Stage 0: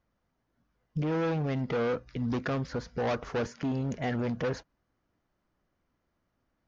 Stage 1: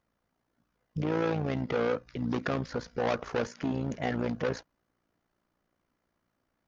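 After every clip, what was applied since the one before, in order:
low-shelf EQ 110 Hz −8 dB
amplitude modulation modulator 58 Hz, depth 50%
level +4 dB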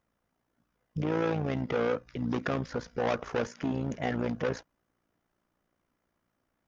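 parametric band 4,300 Hz −5 dB 0.23 octaves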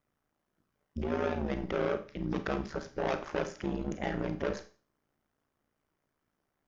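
ring modulation 74 Hz
four-comb reverb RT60 0.38 s, combs from 29 ms, DRR 9 dB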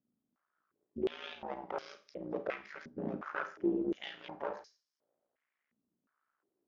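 band-pass on a step sequencer 2.8 Hz 230–5,100 Hz
level +7 dB

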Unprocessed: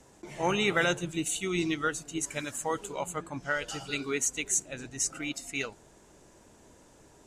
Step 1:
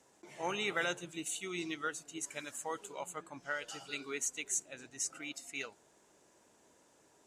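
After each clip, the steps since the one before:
high-pass filter 380 Hz 6 dB per octave
level −7 dB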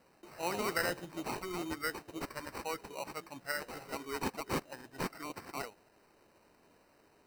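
decimation without filtering 13×
level +1 dB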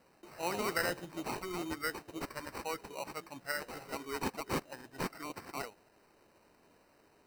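no processing that can be heard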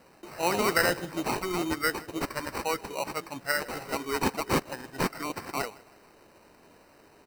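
repeating echo 159 ms, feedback 44%, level −22.5 dB
level +9 dB

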